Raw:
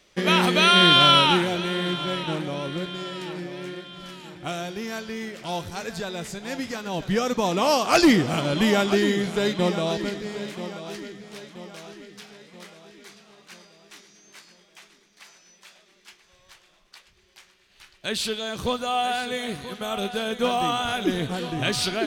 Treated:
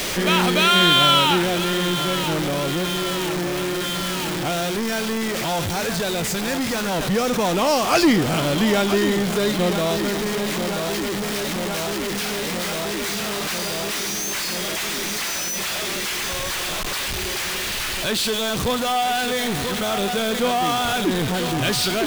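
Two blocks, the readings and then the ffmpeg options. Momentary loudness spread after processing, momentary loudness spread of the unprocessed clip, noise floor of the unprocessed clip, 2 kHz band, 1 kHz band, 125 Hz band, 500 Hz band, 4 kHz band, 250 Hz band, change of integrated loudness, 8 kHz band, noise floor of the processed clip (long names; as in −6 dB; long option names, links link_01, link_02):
7 LU, 19 LU, −60 dBFS, +4.0 dB, +3.0 dB, +4.0 dB, +4.0 dB, +2.5 dB, +3.5 dB, +2.0 dB, +11.0 dB, −26 dBFS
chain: -af "aeval=exprs='val(0)+0.5*0.126*sgn(val(0))':channel_layout=same,volume=-2dB"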